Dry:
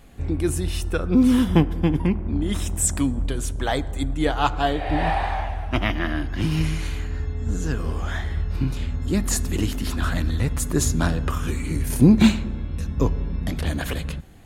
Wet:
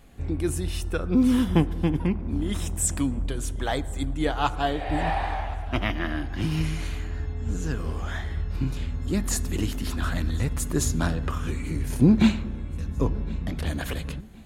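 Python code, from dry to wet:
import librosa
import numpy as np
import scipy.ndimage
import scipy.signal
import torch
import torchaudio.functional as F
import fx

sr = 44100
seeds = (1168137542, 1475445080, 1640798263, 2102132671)

y = fx.high_shelf(x, sr, hz=fx.line((11.12, 9100.0), (13.58, 4800.0)), db=-9.5, at=(11.12, 13.58), fade=0.02)
y = fx.echo_feedback(y, sr, ms=1066, feedback_pct=35, wet_db=-22)
y = y * 10.0 ** (-3.5 / 20.0)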